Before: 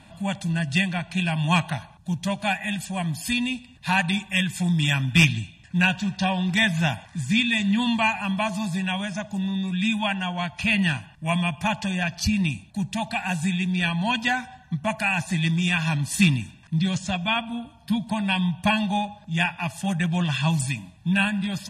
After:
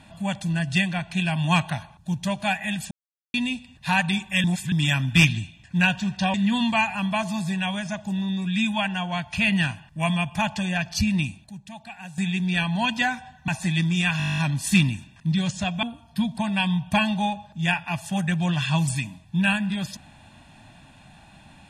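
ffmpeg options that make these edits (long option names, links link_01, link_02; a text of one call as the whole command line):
ffmpeg -i in.wav -filter_complex "[0:a]asplit=20[link_01][link_02][link_03][link_04][link_05][link_06][link_07][link_08][link_09][link_10][link_11][link_12][link_13][link_14][link_15][link_16][link_17][link_18][link_19][link_20];[link_01]atrim=end=2.91,asetpts=PTS-STARTPTS,afade=type=out:start_time=2.906:duration=0.004:curve=hsin[link_21];[link_02]atrim=start=2.91:end=3.34,asetpts=PTS-STARTPTS,volume=0[link_22];[link_03]atrim=start=3.34:end=4.442,asetpts=PTS-STARTPTS,afade=type=in:duration=0.004:curve=hsin[link_23];[link_04]atrim=start=4.438:end=4.722,asetpts=PTS-STARTPTS,areverse[link_24];[link_05]atrim=start=4.718:end=6.342[link_25];[link_06]atrim=start=7.598:end=12.76,asetpts=PTS-STARTPTS,afade=type=out:start_time=4.872:duration=0.29:curve=log:silence=0.223872[link_26];[link_07]atrim=start=12.76:end=13.44,asetpts=PTS-STARTPTS,volume=-13dB[link_27];[link_08]atrim=start=13.44:end=14.742,asetpts=PTS-STARTPTS,afade=type=in:duration=0.29:curve=log:silence=0.223872[link_28];[link_09]atrim=start=15.148:end=15.872[link_29];[link_10]atrim=start=15.848:end=15.872[link_30];[link_11]atrim=start=15.848:end=15.872[link_31];[link_12]atrim=start=15.848:end=15.872[link_32];[link_13]atrim=start=15.848:end=15.872[link_33];[link_14]atrim=start=15.848:end=15.872[link_34];[link_15]atrim=start=15.848:end=15.872[link_35];[link_16]atrim=start=15.848:end=15.872[link_36];[link_17]atrim=start=15.848:end=15.872[link_37];[link_18]atrim=start=15.848:end=15.872[link_38];[link_19]atrim=start=15.848:end=17.302[link_39];[link_20]atrim=start=17.548[link_40];[link_21][link_22][link_23]concat=n=3:v=0:a=1[link_41];[link_41][link_24]acrossfade=duration=0.004:curve1=hsin:curve2=hsin[link_42];[link_42][link_25]acrossfade=duration=0.004:curve1=hsin:curve2=hsin[link_43];[link_26][link_27][link_28]concat=n=3:v=0:a=1[link_44];[link_43][link_44]acrossfade=duration=0.004:curve1=hsin:curve2=hsin[link_45];[link_45][link_29]acrossfade=duration=0.004:curve1=hsin:curve2=hsin[link_46];[link_46][link_30]acrossfade=duration=0.004:curve1=hsin:curve2=hsin[link_47];[link_47][link_31]acrossfade=duration=0.004:curve1=hsin:curve2=hsin[link_48];[link_48][link_32]acrossfade=duration=0.004:curve1=hsin:curve2=hsin[link_49];[link_49][link_33]acrossfade=duration=0.004:curve1=hsin:curve2=hsin[link_50];[link_50][link_34]acrossfade=duration=0.004:curve1=hsin:curve2=hsin[link_51];[link_51][link_35]acrossfade=duration=0.004:curve1=hsin:curve2=hsin[link_52];[link_52][link_36]acrossfade=duration=0.004:curve1=hsin:curve2=hsin[link_53];[link_53][link_37]acrossfade=duration=0.004:curve1=hsin:curve2=hsin[link_54];[link_54][link_38]acrossfade=duration=0.004:curve1=hsin:curve2=hsin[link_55];[link_55][link_39]acrossfade=duration=0.004:curve1=hsin:curve2=hsin[link_56];[link_56][link_40]acrossfade=duration=0.004:curve1=hsin:curve2=hsin" out.wav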